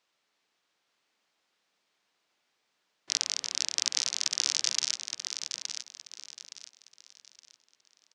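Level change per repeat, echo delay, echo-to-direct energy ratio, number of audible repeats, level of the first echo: -10.0 dB, 868 ms, -7.0 dB, 3, -7.5 dB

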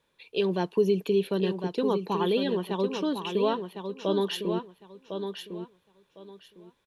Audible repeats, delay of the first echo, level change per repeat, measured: 3, 1055 ms, -13.5 dB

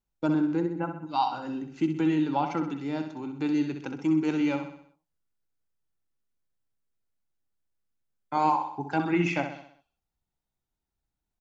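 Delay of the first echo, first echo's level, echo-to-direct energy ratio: 64 ms, -8.0 dB, -6.5 dB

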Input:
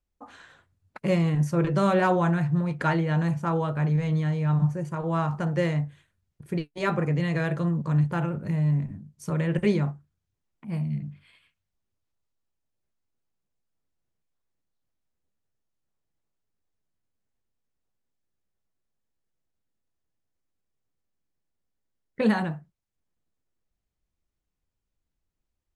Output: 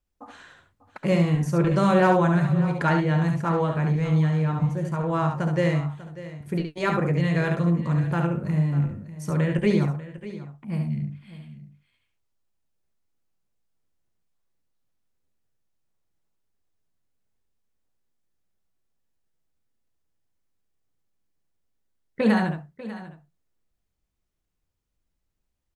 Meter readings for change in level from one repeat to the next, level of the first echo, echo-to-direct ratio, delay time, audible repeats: no regular repeats, -5.5 dB, -5.0 dB, 70 ms, 3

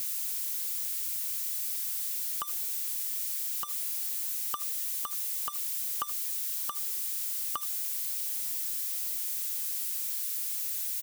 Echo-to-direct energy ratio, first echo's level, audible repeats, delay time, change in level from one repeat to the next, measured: -17.5 dB, -17.5 dB, 1, 76 ms, no regular repeats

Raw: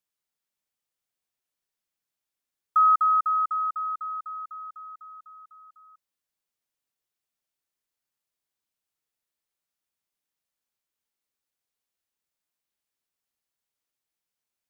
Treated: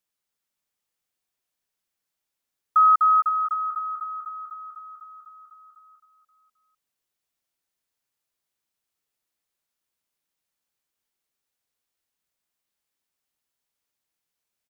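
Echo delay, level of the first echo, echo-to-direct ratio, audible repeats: 264 ms, -7.5 dB, -6.5 dB, 3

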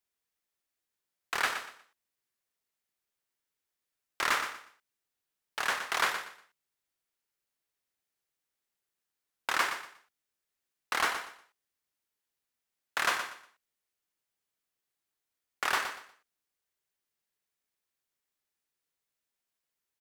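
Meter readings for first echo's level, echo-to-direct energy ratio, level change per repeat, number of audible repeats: -9.0 dB, -8.5 dB, -12.0 dB, 3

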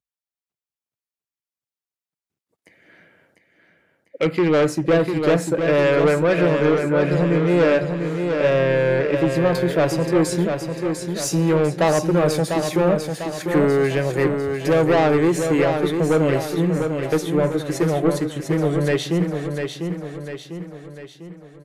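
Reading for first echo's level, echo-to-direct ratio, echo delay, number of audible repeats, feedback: -6.0 dB, -5.0 dB, 698 ms, 5, 50%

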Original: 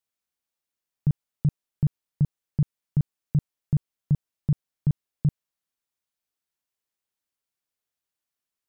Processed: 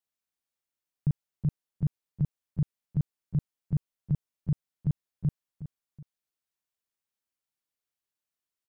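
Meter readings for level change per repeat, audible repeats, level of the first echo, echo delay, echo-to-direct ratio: -9.0 dB, 2, -12.5 dB, 369 ms, -12.0 dB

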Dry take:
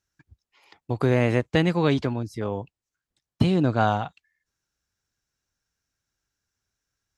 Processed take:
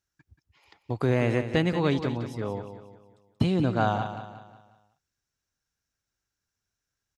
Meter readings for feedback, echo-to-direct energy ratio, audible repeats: 43%, -9.0 dB, 4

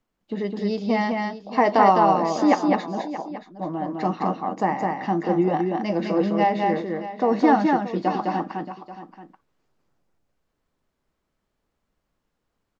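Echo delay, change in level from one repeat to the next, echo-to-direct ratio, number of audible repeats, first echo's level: 208 ms, no regular repeats, -2.5 dB, 3, -3.0 dB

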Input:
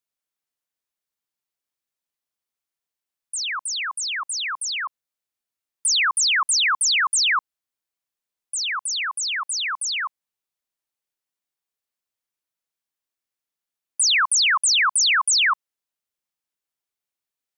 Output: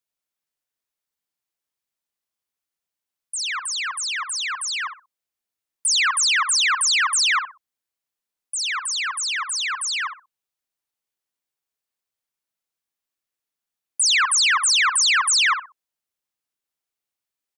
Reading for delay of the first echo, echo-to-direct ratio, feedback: 62 ms, -9.0 dB, 23%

